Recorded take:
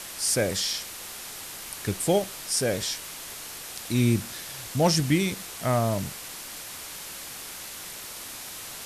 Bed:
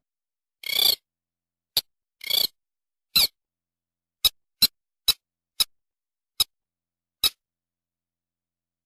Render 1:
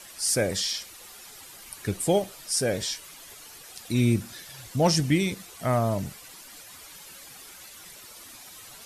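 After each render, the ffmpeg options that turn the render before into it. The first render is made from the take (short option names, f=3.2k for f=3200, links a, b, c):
-af "afftdn=nr=11:nf=-40"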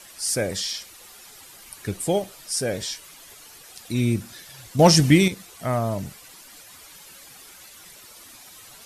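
-filter_complex "[0:a]asplit=3[a][b][c];[a]atrim=end=4.792[d];[b]atrim=start=4.788:end=5.282,asetpts=PTS-STARTPTS,volume=7.5dB[e];[c]atrim=start=5.278[f];[d][e]acrossfade=d=0.004:c1=hsin:c2=hsin[g];[g][f]acrossfade=d=0.004:c1=hsin:c2=hsin"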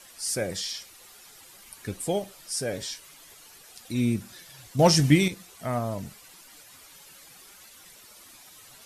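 -af "flanger=delay=3.6:depth=4.3:regen=74:speed=0.51:shape=triangular"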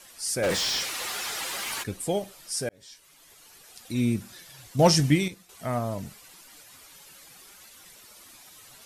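-filter_complex "[0:a]asplit=3[a][b][c];[a]afade=t=out:st=0.42:d=0.02[d];[b]asplit=2[e][f];[f]highpass=f=720:p=1,volume=32dB,asoftclip=type=tanh:threshold=-17dB[g];[e][g]amix=inputs=2:normalize=0,lowpass=f=3.5k:p=1,volume=-6dB,afade=t=in:st=0.42:d=0.02,afade=t=out:st=1.82:d=0.02[h];[c]afade=t=in:st=1.82:d=0.02[i];[d][h][i]amix=inputs=3:normalize=0,asplit=3[j][k][l];[j]atrim=end=2.69,asetpts=PTS-STARTPTS,afade=t=out:st=2.686:d=0.004:c=hsin[m];[k]atrim=start=2.69:end=5.49,asetpts=PTS-STARTPTS,afade=t=in:d=1.38:c=qsin,afade=t=out:st=2.2:d=0.6:silence=0.334965[n];[l]atrim=start=5.49,asetpts=PTS-STARTPTS,afade=t=in:d=0.004:c=hsin:silence=0.334965[o];[m][n][o]concat=n=3:v=0:a=1"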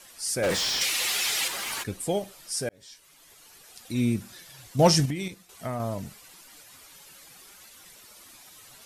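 -filter_complex "[0:a]asettb=1/sr,asplit=3[a][b][c];[a]atrim=end=0.814[d];[b]atrim=start=0.81:end=1.48,asetpts=PTS-STARTPTS,afade=t=in:d=0.004:c=qsin,afade=t=out:st=0.666:d=0.004:c=qsin,highshelf=f=1.8k:t=q:w=1.5:g=6[e];[c]atrim=start=1.476[f];[d][e]acrossfade=d=0.004:c1=hsin:c2=qsin[g];[g][f]acrossfade=d=0.004:c1=qsin:c2=hsin,asettb=1/sr,asplit=3[h][i][j];[h]atrim=end=5.054[k];[i]atrim=start=5.05:end=5.8,asetpts=PTS-STARTPTS,afade=t=in:d=0.004:c=qsin,afade=t=out:st=0.746:d=0.004:c=qsin,acompressor=threshold=-26dB:ratio=10:attack=3.2:release=140:knee=1:detection=peak[l];[j]atrim=start=5.796[m];[k][l]acrossfade=d=0.004:c1=hsin:c2=qsin[n];[n][m]acrossfade=d=0.004:c1=qsin:c2=hsin"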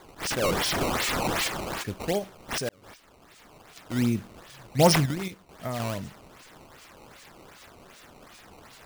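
-af "acrusher=samples=15:mix=1:aa=0.000001:lfo=1:lforange=24:lforate=2.6"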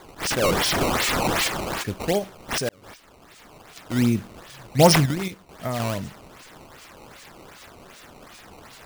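-af "volume=4.5dB,alimiter=limit=-3dB:level=0:latency=1"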